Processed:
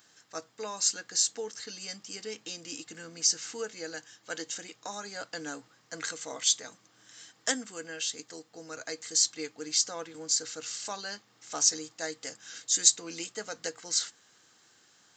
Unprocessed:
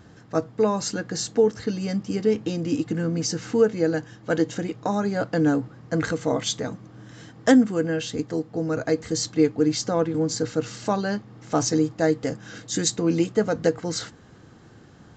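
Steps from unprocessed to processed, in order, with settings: differentiator; gain +5.5 dB

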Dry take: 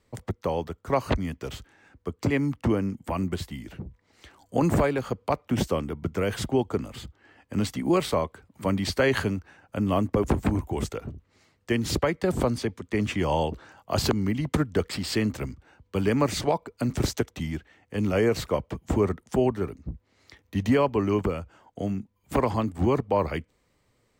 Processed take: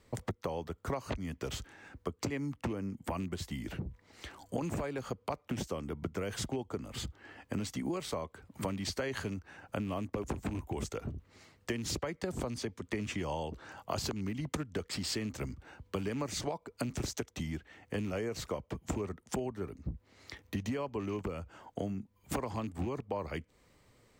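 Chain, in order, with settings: rattling part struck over -23 dBFS, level -30 dBFS; dynamic EQ 6400 Hz, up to +6 dB, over -53 dBFS, Q 1.5; compressor 8:1, threshold -37 dBFS, peak gain reduction 19 dB; gain +3.5 dB

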